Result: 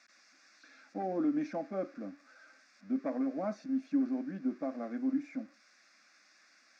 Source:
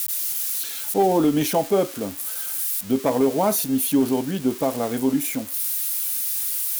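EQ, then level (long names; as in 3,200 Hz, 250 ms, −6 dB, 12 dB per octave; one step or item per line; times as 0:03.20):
high-frequency loss of the air 190 metres
loudspeaker in its box 210–5,200 Hz, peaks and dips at 490 Hz −5 dB, 690 Hz −6 dB, 1,300 Hz −4 dB, 1,900 Hz −3 dB, 4,000 Hz −8 dB
phaser with its sweep stopped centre 620 Hz, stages 8
−8.0 dB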